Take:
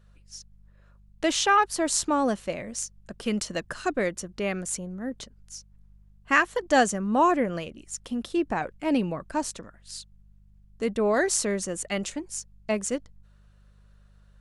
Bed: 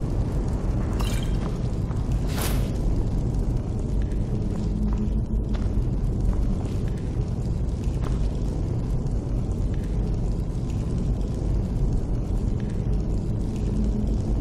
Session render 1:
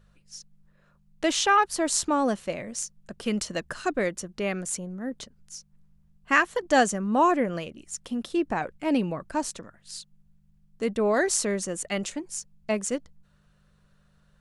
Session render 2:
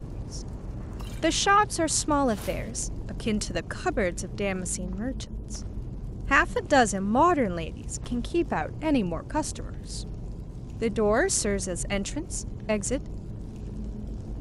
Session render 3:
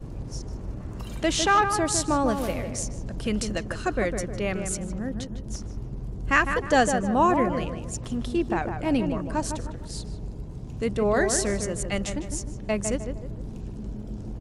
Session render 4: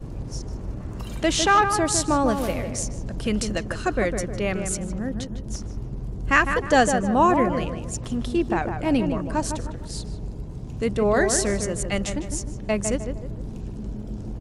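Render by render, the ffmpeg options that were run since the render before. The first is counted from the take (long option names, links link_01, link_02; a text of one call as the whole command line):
ffmpeg -i in.wav -af "bandreject=frequency=50:width_type=h:width=4,bandreject=frequency=100:width_type=h:width=4" out.wav
ffmpeg -i in.wav -i bed.wav -filter_complex "[1:a]volume=-11.5dB[link_01];[0:a][link_01]amix=inputs=2:normalize=0" out.wav
ffmpeg -i in.wav -filter_complex "[0:a]asplit=2[link_01][link_02];[link_02]adelay=154,lowpass=frequency=1700:poles=1,volume=-6dB,asplit=2[link_03][link_04];[link_04]adelay=154,lowpass=frequency=1700:poles=1,volume=0.43,asplit=2[link_05][link_06];[link_06]adelay=154,lowpass=frequency=1700:poles=1,volume=0.43,asplit=2[link_07][link_08];[link_08]adelay=154,lowpass=frequency=1700:poles=1,volume=0.43,asplit=2[link_09][link_10];[link_10]adelay=154,lowpass=frequency=1700:poles=1,volume=0.43[link_11];[link_01][link_03][link_05][link_07][link_09][link_11]amix=inputs=6:normalize=0" out.wav
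ffmpeg -i in.wav -af "volume=2.5dB" out.wav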